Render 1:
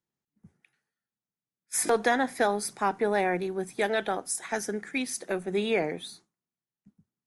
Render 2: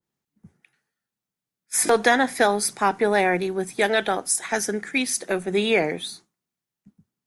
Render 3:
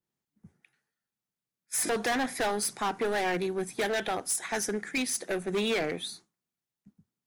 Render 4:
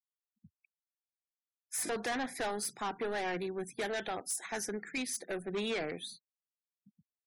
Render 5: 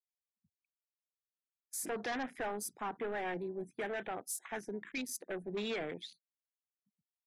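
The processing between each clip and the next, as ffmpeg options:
-af "adynamicequalizer=threshold=0.0141:dfrequency=1600:dqfactor=0.7:tfrequency=1600:tqfactor=0.7:attack=5:release=100:ratio=0.375:range=2:mode=boostabove:tftype=highshelf,volume=1.88"
-af "asoftclip=type=hard:threshold=0.0944,volume=0.596"
-af "afftfilt=real='re*gte(hypot(re,im),0.00501)':imag='im*gte(hypot(re,im),0.00501)':win_size=1024:overlap=0.75,volume=0.473"
-af "afwtdn=0.00631,volume=0.75"

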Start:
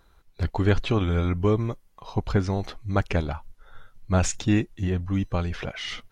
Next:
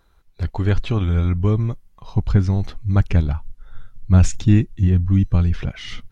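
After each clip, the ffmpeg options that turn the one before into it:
-af "asubboost=boost=5:cutoff=240,volume=0.891"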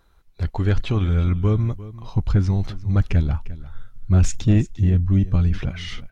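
-af "asoftclip=type=tanh:threshold=0.376,aecho=1:1:350:0.141"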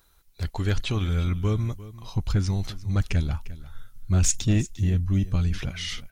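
-af "crystalizer=i=4.5:c=0,volume=0.531"

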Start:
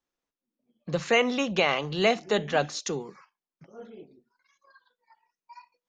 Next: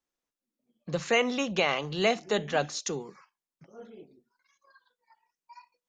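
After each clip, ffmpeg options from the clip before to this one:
-af "equalizer=f=7200:w=1.3:g=3.5,volume=0.75"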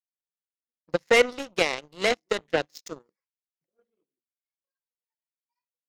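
-af "equalizer=f=315:t=o:w=0.33:g=8,equalizer=f=500:t=o:w=0.33:g=10,equalizer=f=1250:t=o:w=0.33:g=-11,equalizer=f=2000:t=o:w=0.33:g=8,equalizer=f=5000:t=o:w=0.33:g=9,aeval=exprs='0.473*(cos(1*acos(clip(val(0)/0.473,-1,1)))-cos(1*PI/2))+0.0668*(cos(7*acos(clip(val(0)/0.473,-1,1)))-cos(7*PI/2))':c=same"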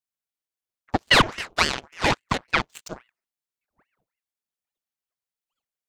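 -af "aeval=exprs='val(0)*sin(2*PI*1300*n/s+1300*0.9/3.6*sin(2*PI*3.6*n/s))':c=same,volume=1.78"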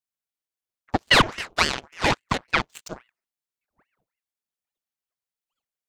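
-af anull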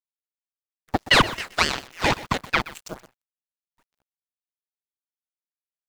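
-af "aecho=1:1:124:0.133,acrusher=bits=8:dc=4:mix=0:aa=0.000001"

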